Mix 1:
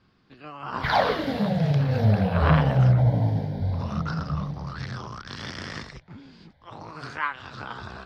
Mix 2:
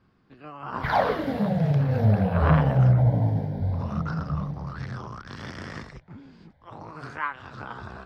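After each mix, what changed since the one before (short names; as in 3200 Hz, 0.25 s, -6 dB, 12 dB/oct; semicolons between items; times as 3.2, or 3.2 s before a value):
master: add bell 4200 Hz -9 dB 1.7 oct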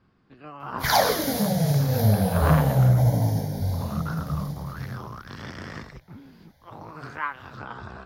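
second sound: remove air absorption 470 m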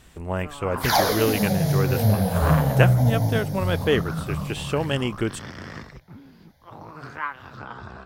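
speech: unmuted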